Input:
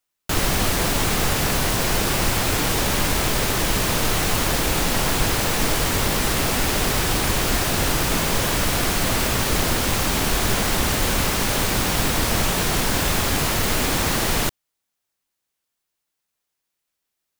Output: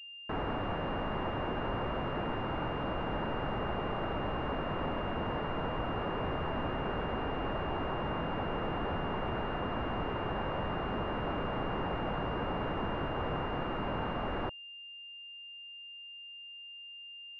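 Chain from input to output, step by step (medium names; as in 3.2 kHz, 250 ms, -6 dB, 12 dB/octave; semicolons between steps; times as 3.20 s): wavefolder -23.5 dBFS; class-D stage that switches slowly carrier 2.8 kHz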